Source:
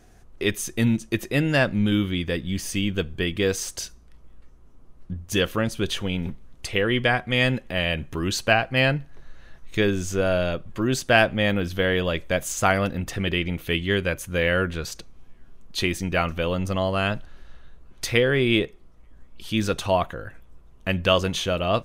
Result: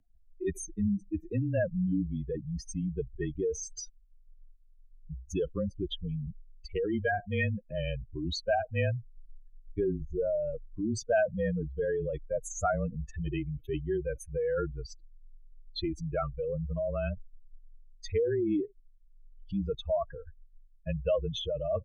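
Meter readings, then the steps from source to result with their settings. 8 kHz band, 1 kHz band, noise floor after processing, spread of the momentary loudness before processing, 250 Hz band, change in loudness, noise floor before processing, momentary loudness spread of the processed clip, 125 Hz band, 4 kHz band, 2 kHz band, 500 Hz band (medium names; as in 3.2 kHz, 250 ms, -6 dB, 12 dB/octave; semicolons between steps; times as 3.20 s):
-10.5 dB, -10.5 dB, -58 dBFS, 11 LU, -8.5 dB, -9.0 dB, -50 dBFS, 9 LU, -8.0 dB, -16.5 dB, -16.0 dB, -6.5 dB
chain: spectral contrast enhancement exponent 3.5; frequency shift -25 Hz; trim -7.5 dB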